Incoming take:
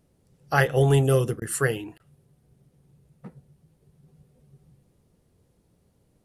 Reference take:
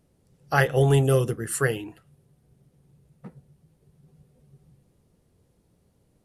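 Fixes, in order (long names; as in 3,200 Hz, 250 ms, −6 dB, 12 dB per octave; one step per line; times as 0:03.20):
repair the gap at 0:01.40/0:01.98, 16 ms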